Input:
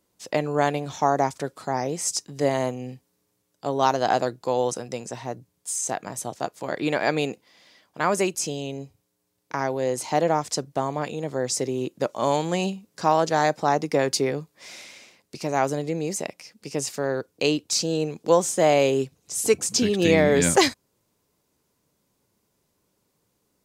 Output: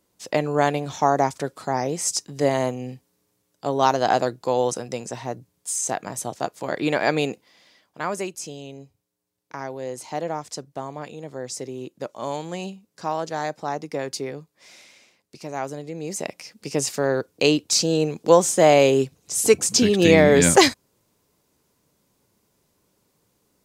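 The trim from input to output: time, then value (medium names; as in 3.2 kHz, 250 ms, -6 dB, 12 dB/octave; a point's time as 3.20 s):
7.31 s +2 dB
8.30 s -6.5 dB
15.92 s -6.5 dB
16.36 s +4 dB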